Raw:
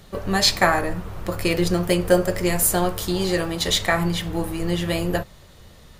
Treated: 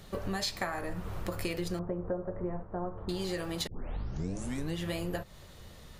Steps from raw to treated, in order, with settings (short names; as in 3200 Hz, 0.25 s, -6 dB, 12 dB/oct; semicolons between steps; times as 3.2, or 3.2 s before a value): 3.67 tape start 1.10 s; compressor 6:1, threshold -28 dBFS, peak gain reduction 16 dB; 1.79–3.09 inverse Chebyshev low-pass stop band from 6800 Hz, stop band 80 dB; gain -3.5 dB